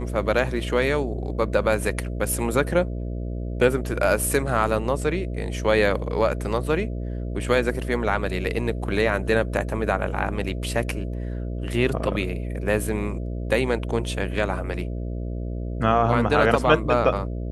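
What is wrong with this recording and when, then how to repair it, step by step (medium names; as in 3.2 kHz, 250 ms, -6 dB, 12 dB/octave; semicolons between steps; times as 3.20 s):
buzz 60 Hz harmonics 11 -29 dBFS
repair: de-hum 60 Hz, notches 11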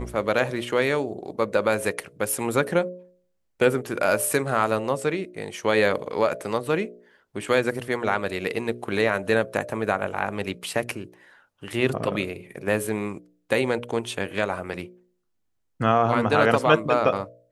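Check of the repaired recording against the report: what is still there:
nothing left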